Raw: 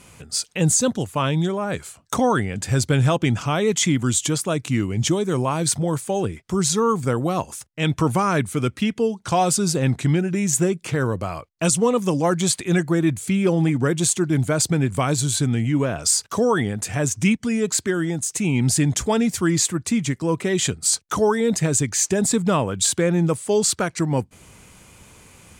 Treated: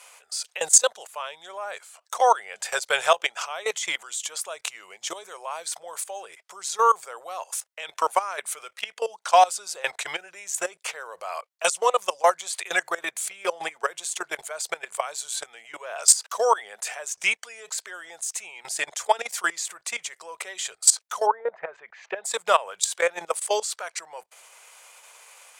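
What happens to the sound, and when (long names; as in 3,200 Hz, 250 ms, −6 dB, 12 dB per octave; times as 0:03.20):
0:21.25–0:22.24: low-pass filter 1,200 Hz → 3,100 Hz 24 dB per octave
whole clip: output level in coarse steps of 18 dB; inverse Chebyshev high-pass filter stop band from 290 Hz, stop band 40 dB; level +6.5 dB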